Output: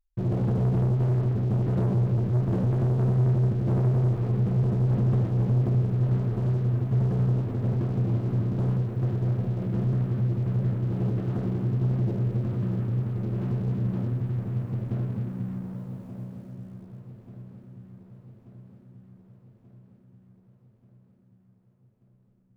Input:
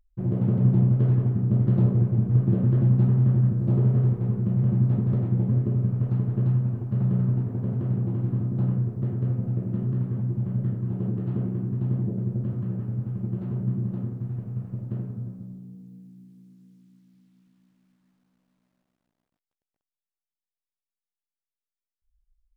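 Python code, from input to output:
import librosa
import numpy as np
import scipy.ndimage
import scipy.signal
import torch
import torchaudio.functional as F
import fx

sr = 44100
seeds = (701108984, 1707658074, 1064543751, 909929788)

y = fx.dynamic_eq(x, sr, hz=180.0, q=0.88, threshold_db=-34.0, ratio=4.0, max_db=-6)
y = fx.leveller(y, sr, passes=3)
y = fx.echo_feedback(y, sr, ms=1184, feedback_pct=60, wet_db=-13)
y = y * librosa.db_to_amplitude(-5.0)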